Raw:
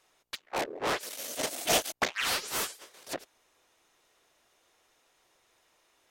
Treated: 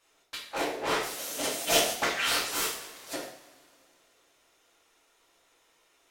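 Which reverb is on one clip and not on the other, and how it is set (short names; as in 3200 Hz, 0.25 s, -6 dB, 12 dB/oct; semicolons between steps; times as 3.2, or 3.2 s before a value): two-slope reverb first 0.54 s, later 2.5 s, from -19 dB, DRR -6 dB; gain -4.5 dB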